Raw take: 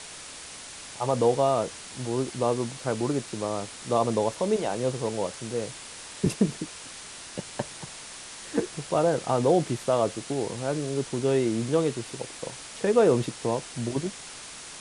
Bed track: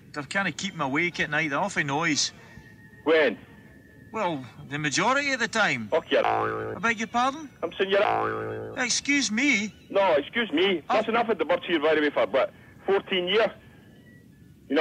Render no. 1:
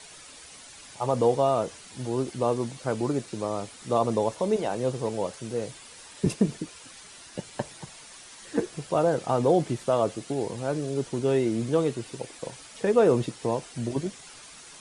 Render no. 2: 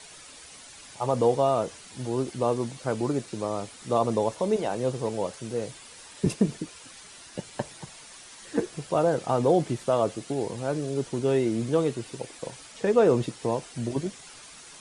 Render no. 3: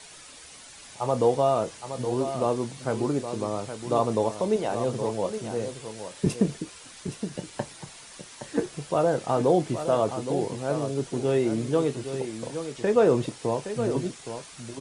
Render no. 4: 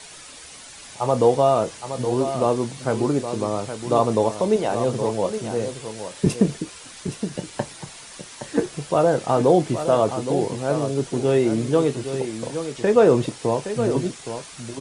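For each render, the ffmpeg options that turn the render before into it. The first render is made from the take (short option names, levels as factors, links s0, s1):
-af "afftdn=nr=9:nf=-43"
-filter_complex "[0:a]asettb=1/sr,asplit=3[s0][s1][s2];[s0]atrim=end=12.724[s3];[s1]atrim=start=12.72:end=13.22,asetpts=PTS-STARTPTS,afade=t=in:d=0.004:c=qsin,afade=t=out:st=0.496:d=0.004:c=qsin,lowpass=f=9200:w=0.5412,lowpass=f=9200:w=1.3066[s4];[s2]atrim=start=13.216[s5];[s3][s4]acrossfade=d=0.004:c1=hsin:c2=qsin[s6];[s6][s5]acrossfade=d=0.004:c1=qsin:c2=hsin"
-filter_complex "[0:a]asplit=2[s0][s1];[s1]adelay=28,volume=0.211[s2];[s0][s2]amix=inputs=2:normalize=0,aecho=1:1:818:0.335"
-af "volume=1.78"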